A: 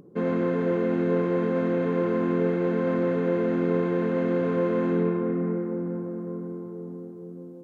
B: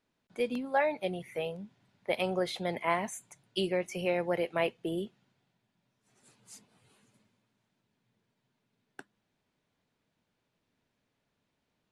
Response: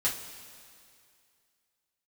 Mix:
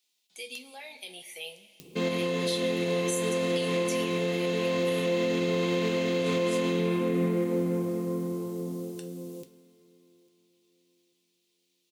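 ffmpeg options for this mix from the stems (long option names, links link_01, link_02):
-filter_complex "[0:a]adelay=1800,volume=0dB,asplit=3[link_01][link_02][link_03];[link_02]volume=-11.5dB[link_04];[link_03]volume=-24dB[link_05];[1:a]alimiter=level_in=3.5dB:limit=-24dB:level=0:latency=1:release=58,volume=-3.5dB,highpass=310,volume=-15dB,asplit=3[link_06][link_07][link_08];[link_07]volume=-8dB[link_09];[link_08]apad=whole_len=416060[link_10];[link_01][link_10]sidechaincompress=threshold=-58dB:ratio=8:attack=11:release=1170[link_11];[2:a]atrim=start_sample=2205[link_12];[link_04][link_09]amix=inputs=2:normalize=0[link_13];[link_13][link_12]afir=irnorm=-1:irlink=0[link_14];[link_05]aecho=0:1:850|1700|2550|3400|4250:1|0.32|0.102|0.0328|0.0105[link_15];[link_11][link_06][link_14][link_15]amix=inputs=4:normalize=0,aexciter=amount=13.1:drive=4.4:freq=2400,alimiter=limit=-19dB:level=0:latency=1:release=131"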